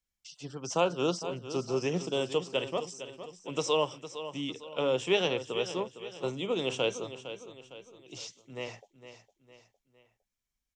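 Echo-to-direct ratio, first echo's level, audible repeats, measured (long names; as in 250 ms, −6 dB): −11.0 dB, −12.0 dB, 3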